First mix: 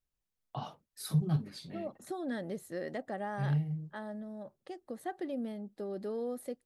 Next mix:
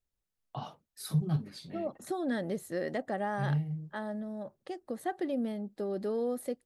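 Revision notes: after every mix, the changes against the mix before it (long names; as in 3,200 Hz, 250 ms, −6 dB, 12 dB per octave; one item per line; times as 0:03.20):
second voice +4.5 dB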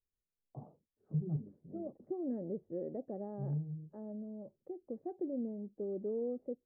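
second voice: add parametric band 2,300 Hz +6.5 dB 0.63 octaves
master: add transistor ladder low-pass 580 Hz, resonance 30%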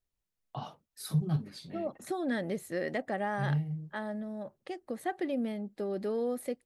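master: remove transistor ladder low-pass 580 Hz, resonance 30%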